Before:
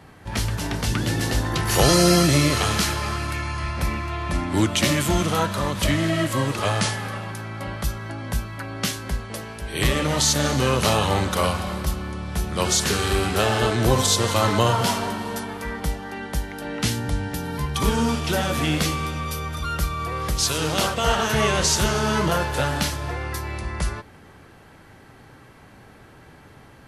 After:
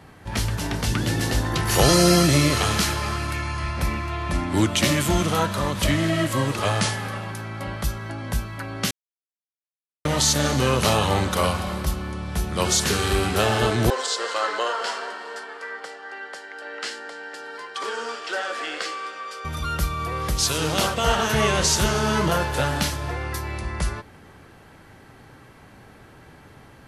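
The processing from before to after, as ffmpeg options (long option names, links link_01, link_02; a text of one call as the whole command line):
ffmpeg -i in.wav -filter_complex "[0:a]asettb=1/sr,asplit=3[link_01][link_02][link_03];[link_01]atrim=end=13.904[link_04];[link_02]atrim=start=13.9:end=19.45,asetpts=PTS-STARTPTS,afade=type=in:duration=0.004:curve=qsin,afade=type=out:start_time=5.546:duration=0.004:curve=qsin,highpass=frequency=470:width=0.5412,highpass=frequency=470:width=1.3066,equalizer=frequency=640:width_type=q:width=4:gain=-6,equalizer=frequency=920:width_type=q:width=4:gain=-7,equalizer=frequency=1600:width_type=q:width=4:gain=4,equalizer=frequency=2400:width_type=q:width=4:gain=-6,equalizer=frequency=3600:width_type=q:width=4:gain=-7,equalizer=frequency=6100:width_type=q:width=4:gain=-9,lowpass=frequency=7000:width=0.5412,lowpass=frequency=7000:width=1.3066[link_05];[link_03]atrim=start=19.446[link_06];[link_04][link_05]acrossfade=duration=0.004:curve1=hsin:curve2=qsin[link_07];[link_07][link_06]acrossfade=duration=0.004:curve1=qsin:curve2=hsin,asplit=3[link_08][link_09][link_10];[link_08]atrim=end=8.91,asetpts=PTS-STARTPTS,afade=type=out:start_time=8.906:duration=0.004:curve=hsin[link_11];[link_09]atrim=start=8.91:end=10.05,asetpts=PTS-STARTPTS,volume=0[link_12];[link_10]atrim=start=10.05,asetpts=PTS-STARTPTS,afade=type=in:duration=0.004:curve=hsin[link_13];[link_11][link_12][link_13]concat=n=3:v=0:a=1" out.wav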